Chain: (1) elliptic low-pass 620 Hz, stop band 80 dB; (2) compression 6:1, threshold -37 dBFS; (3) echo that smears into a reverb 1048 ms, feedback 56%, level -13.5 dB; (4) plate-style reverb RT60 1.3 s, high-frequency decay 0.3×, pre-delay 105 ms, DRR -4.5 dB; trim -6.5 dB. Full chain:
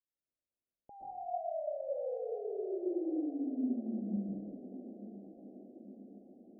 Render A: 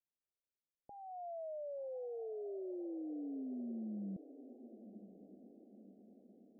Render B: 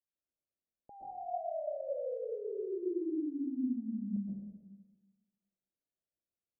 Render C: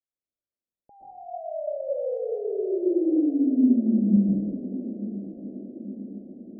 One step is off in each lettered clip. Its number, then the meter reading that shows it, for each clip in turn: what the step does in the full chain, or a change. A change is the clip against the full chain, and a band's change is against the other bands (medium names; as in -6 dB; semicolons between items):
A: 4, loudness change -7.0 LU; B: 3, momentary loudness spread change -7 LU; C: 2, mean gain reduction 10.5 dB